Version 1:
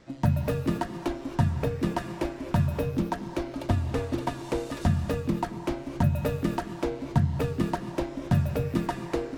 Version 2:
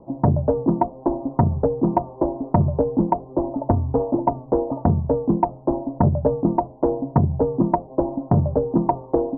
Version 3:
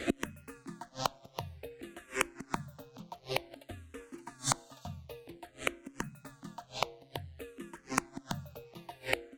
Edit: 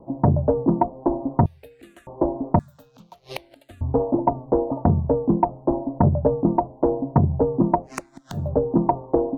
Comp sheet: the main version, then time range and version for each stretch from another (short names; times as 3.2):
2
1.46–2.07 from 3
2.59–3.81 from 3
7.9–8.43 from 3, crossfade 0.24 s
not used: 1